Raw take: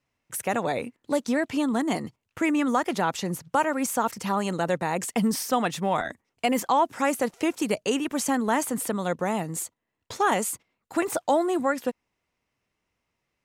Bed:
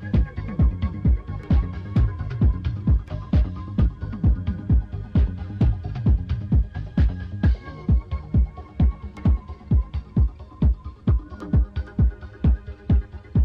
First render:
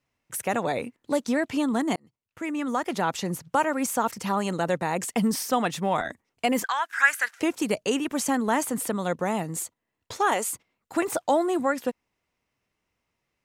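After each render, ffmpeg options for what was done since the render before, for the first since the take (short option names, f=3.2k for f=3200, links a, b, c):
-filter_complex "[0:a]asettb=1/sr,asplit=3[a][b][c];[a]atrim=end=6.644[d];[b]atrim=start=6.64:end=7.4,asetpts=PTS-STARTPTS,afade=t=in:d=0.004:c=qsin,afade=t=out:st=0.756:d=0.004:c=qsin,highpass=f=1.6k:t=q:w=7.7[e];[c]atrim=start=7.396[f];[d][e]acrossfade=d=0.004:c1=hsin:c2=qsin[g];[g][f]acrossfade=d=0.004:c1=qsin:c2=hsin,asettb=1/sr,asplit=3[h][i][j];[h]atrim=end=10.134[k];[i]atrim=start=10.13:end=10.53,asetpts=PTS-STARTPTS,afade=t=in:d=0.004:c=qsin,afade=t=out:st=0.396:d=0.004:c=qsin,equalizer=f=180:t=o:w=0.89:g=-10.5[l];[j]atrim=start=10.526[m];[k][l]acrossfade=d=0.004:c1=hsin:c2=qsin[n];[n][m]acrossfade=d=0.004:c1=qsin:c2=hsin,asplit=2[o][p];[o]atrim=end=1.96,asetpts=PTS-STARTPTS,afade=t=out:st=1.956:d=0.004:c=hsin[q];[p]atrim=start=1.96,asetpts=PTS-STARTPTS,afade=t=in:d=1.16[r];[q][r]concat=n=2:v=0:a=1"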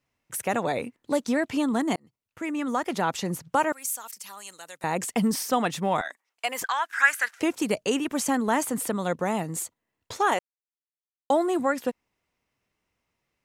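-filter_complex "[0:a]asettb=1/sr,asplit=3[a][b][c];[a]atrim=end=3.724[d];[b]atrim=start=3.72:end=4.84,asetpts=PTS-STARTPTS,afade=t=in:d=0.004:c=qsin,afade=t=out:st=1.116:d=0.004:c=qsin,aderivative[e];[c]atrim=start=4.836[f];[d][e]acrossfade=d=0.004:c1=hsin:c2=qsin[g];[g][f]acrossfade=d=0.004:c1=qsin:c2=hsin,asettb=1/sr,asplit=3[h][i][j];[h]atrim=end=6.014[k];[i]atrim=start=6.01:end=6.62,asetpts=PTS-STARTPTS,afade=t=in:d=0.004:c=qsin,afade=t=out:st=0.606:d=0.004:c=qsin,highpass=850[l];[j]atrim=start=6.616[m];[k][l]acrossfade=d=0.004:c1=hsin:c2=qsin[n];[n][m]acrossfade=d=0.004:c1=qsin:c2=hsin,asplit=3[o][p][q];[o]atrim=end=10.39,asetpts=PTS-STARTPTS,afade=t=out:st=10.386:d=0.004:c=hsin[r];[p]atrim=start=10.39:end=11.3,asetpts=PTS-STARTPTS,volume=0[s];[q]atrim=start=11.3,asetpts=PTS-STARTPTS,afade=t=in:d=0.004:c=hsin[t];[r][s][t]concat=n=3:v=0:a=1"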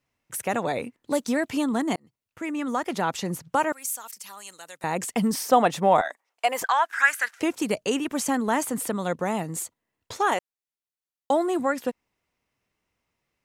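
-filter_complex "[0:a]asettb=1/sr,asplit=3[a][b][c];[a]atrim=end=1.114[d];[b]atrim=start=1.11:end=1.64,asetpts=PTS-STARTPTS,afade=t=in:d=0.004:c=qsin,afade=t=out:st=0.526:d=0.004:c=qsin,highshelf=f=8.2k:g=7.5[e];[c]atrim=start=1.636[f];[d][e]acrossfade=d=0.004:c1=hsin:c2=qsin[g];[g][f]acrossfade=d=0.004:c1=qsin:c2=hsin,asettb=1/sr,asplit=3[h][i][j];[h]atrim=end=5.434[k];[i]atrim=start=5.43:end=6.95,asetpts=PTS-STARTPTS,afade=t=in:d=0.004:c=qsin,afade=t=out:st=1.516:d=0.004:c=qsin,equalizer=f=650:w=0.91:g=8.5[l];[j]atrim=start=6.946[m];[k][l]acrossfade=d=0.004:c1=hsin:c2=qsin[n];[n][m]acrossfade=d=0.004:c1=qsin:c2=hsin"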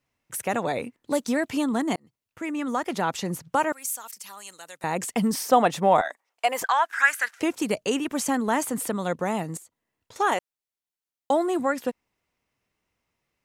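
-filter_complex "[0:a]asettb=1/sr,asplit=3[a][b][c];[a]atrim=end=9.574[d];[b]atrim=start=9.57:end=10.16,asetpts=PTS-STARTPTS,afade=t=in:d=0.004:c=qsin,afade=t=out:st=0.586:d=0.004:c=qsin,acompressor=threshold=-51dB:ratio=3:attack=3.2:release=140:knee=1:detection=peak[e];[c]atrim=start=10.156[f];[d][e]acrossfade=d=0.004:c1=hsin:c2=qsin[g];[g][f]acrossfade=d=0.004:c1=qsin:c2=hsin"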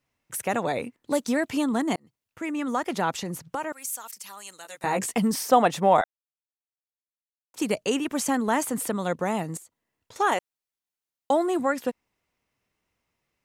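-filter_complex "[0:a]asettb=1/sr,asplit=3[a][b][c];[a]atrim=end=3.184[d];[b]atrim=start=3.18:end=3.93,asetpts=PTS-STARTPTS,afade=t=in:d=0.004:c=qsin,afade=t=out:st=0.746:d=0.004:c=qsin,acompressor=threshold=-29dB:ratio=2.5:attack=3.2:release=140:knee=1:detection=peak[e];[c]atrim=start=3.926[f];[d][e]acrossfade=d=0.004:c1=hsin:c2=qsin[g];[g][f]acrossfade=d=0.004:c1=qsin:c2=hsin,asettb=1/sr,asplit=3[h][i][j];[h]atrim=end=4.634[k];[i]atrim=start=4.63:end=5.18,asetpts=PTS-STARTPTS,afade=t=in:d=0.004:c=qsin,afade=t=out:st=0.546:d=0.004:c=qsin,asplit=2[l][m];[m]adelay=15,volume=-3.5dB[n];[l][n]amix=inputs=2:normalize=0,atrim=end_sample=24255[o];[j]atrim=start=5.176[p];[k][o]acrossfade=d=0.004:c1=hsin:c2=qsin[q];[q][p]acrossfade=d=0.004:c1=qsin:c2=hsin,asplit=3[r][s][t];[r]atrim=end=6.04,asetpts=PTS-STARTPTS,afade=t=out:st=6.036:d=0.004:c=hsin[u];[s]atrim=start=6.04:end=7.54,asetpts=PTS-STARTPTS,volume=0[v];[t]atrim=start=7.54,asetpts=PTS-STARTPTS,afade=t=in:d=0.004:c=hsin[w];[u][v][w]concat=n=3:v=0:a=1"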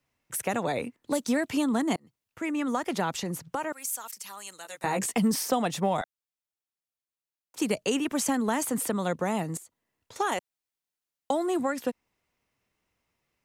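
-filter_complex "[0:a]acrossover=split=250|3000[a][b][c];[b]acompressor=threshold=-25dB:ratio=6[d];[a][d][c]amix=inputs=3:normalize=0"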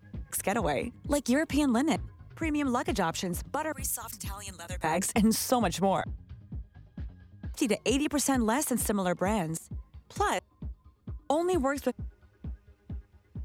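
-filter_complex "[1:a]volume=-21dB[a];[0:a][a]amix=inputs=2:normalize=0"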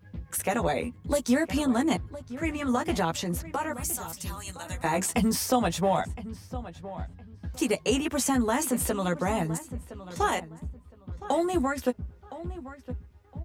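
-filter_complex "[0:a]asplit=2[a][b];[b]adelay=12,volume=-4dB[c];[a][c]amix=inputs=2:normalize=0,asplit=2[d][e];[e]adelay=1014,lowpass=f=2.6k:p=1,volume=-14.5dB,asplit=2[f][g];[g]adelay=1014,lowpass=f=2.6k:p=1,volume=0.24,asplit=2[h][i];[i]adelay=1014,lowpass=f=2.6k:p=1,volume=0.24[j];[d][f][h][j]amix=inputs=4:normalize=0"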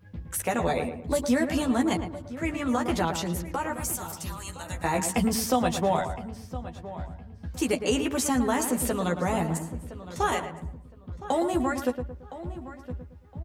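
-filter_complex "[0:a]asplit=2[a][b];[b]adelay=112,lowpass=f=1.7k:p=1,volume=-7.5dB,asplit=2[c][d];[d]adelay=112,lowpass=f=1.7k:p=1,volume=0.39,asplit=2[e][f];[f]adelay=112,lowpass=f=1.7k:p=1,volume=0.39,asplit=2[g][h];[h]adelay=112,lowpass=f=1.7k:p=1,volume=0.39[i];[a][c][e][g][i]amix=inputs=5:normalize=0"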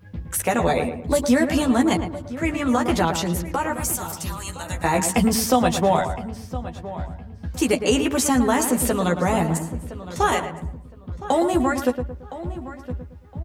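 -af "volume=6dB"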